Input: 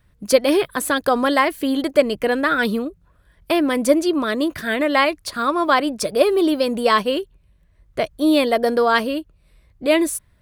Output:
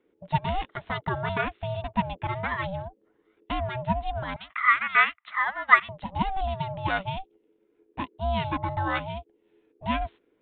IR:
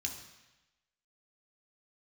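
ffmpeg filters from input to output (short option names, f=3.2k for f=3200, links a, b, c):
-filter_complex "[0:a]asettb=1/sr,asplit=3[a][b][c];[a]atrim=end=4.364[d];[b]atrim=start=4.36:end=5.89,asetpts=PTS-STARTPTS,afade=t=in:d=0.004:c=qsin,afade=t=out:st=1.526:d=0.004:c=qsin,highpass=f=1.6k:t=q:w=11[e];[c]atrim=start=5.886[f];[d][e]acrossfade=d=0.004:c1=hsin:c2=qsin[g];[g][f]acrossfade=d=0.004:c1=qsin:c2=hsin,aeval=exprs='val(0)*sin(2*PI*380*n/s)':c=same,aresample=8000,aresample=44100,volume=-8dB"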